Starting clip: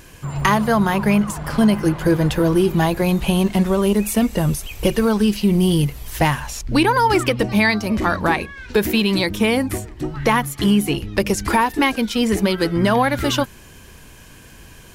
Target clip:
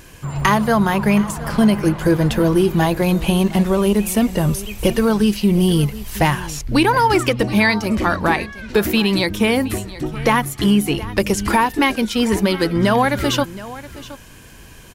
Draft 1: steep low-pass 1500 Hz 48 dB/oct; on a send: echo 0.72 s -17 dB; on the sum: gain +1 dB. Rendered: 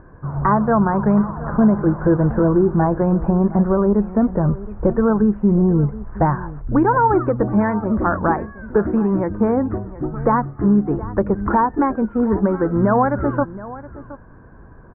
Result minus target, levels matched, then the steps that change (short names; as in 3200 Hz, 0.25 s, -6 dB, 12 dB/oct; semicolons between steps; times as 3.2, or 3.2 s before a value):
2000 Hz band -8.5 dB
remove: steep low-pass 1500 Hz 48 dB/oct